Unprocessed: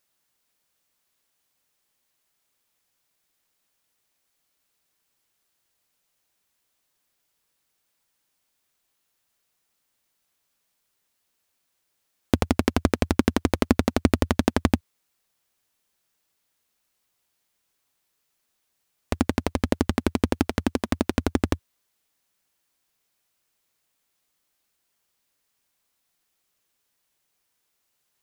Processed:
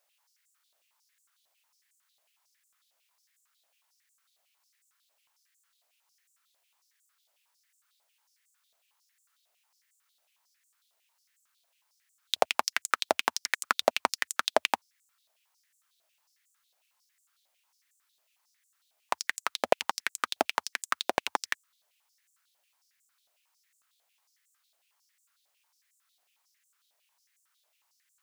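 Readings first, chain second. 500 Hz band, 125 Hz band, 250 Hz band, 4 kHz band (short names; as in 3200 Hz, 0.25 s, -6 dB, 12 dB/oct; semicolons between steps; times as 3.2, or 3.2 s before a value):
-4.5 dB, under -30 dB, -23.5 dB, +3.0 dB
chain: stepped high-pass 11 Hz 650–7400 Hz; gain -1.5 dB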